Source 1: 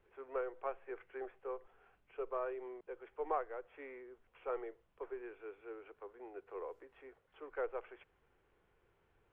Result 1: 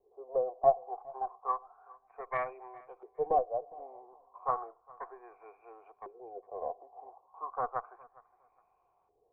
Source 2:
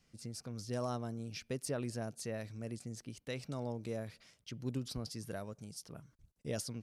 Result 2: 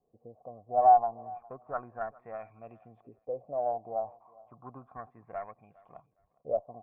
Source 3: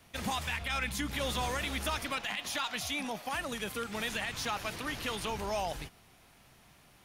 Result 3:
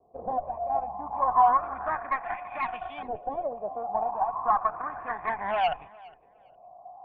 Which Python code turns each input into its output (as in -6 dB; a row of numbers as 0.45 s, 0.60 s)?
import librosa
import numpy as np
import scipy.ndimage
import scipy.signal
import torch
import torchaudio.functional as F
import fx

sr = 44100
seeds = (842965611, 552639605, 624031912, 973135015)

p1 = fx.formant_cascade(x, sr, vowel='a')
p2 = fx.cheby_harmonics(p1, sr, harmonics=(8,), levels_db=(-23,), full_scale_db=-30.0)
p3 = fx.fold_sine(p2, sr, drive_db=3, ceiling_db=-26.5)
p4 = fx.filter_lfo_lowpass(p3, sr, shape='saw_up', hz=0.33, low_hz=410.0, high_hz=3400.0, q=5.6)
p5 = p4 + fx.echo_feedback(p4, sr, ms=410, feedback_pct=21, wet_db=-23, dry=0)
y = p5 * 10.0 ** (8.5 / 20.0)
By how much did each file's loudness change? +10.5 LU, +12.0 LU, +6.0 LU